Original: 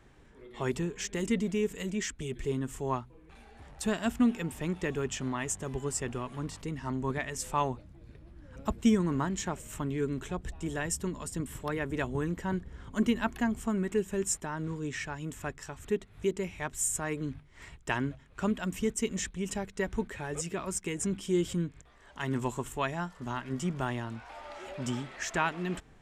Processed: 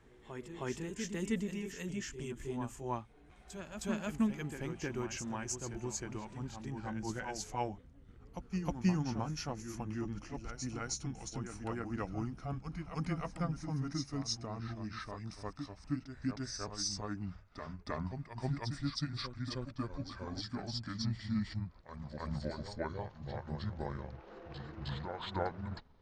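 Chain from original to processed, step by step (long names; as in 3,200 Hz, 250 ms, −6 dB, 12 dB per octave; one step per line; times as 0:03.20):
pitch glide at a constant tempo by −10.5 semitones starting unshifted
backwards echo 314 ms −7 dB
level −5.5 dB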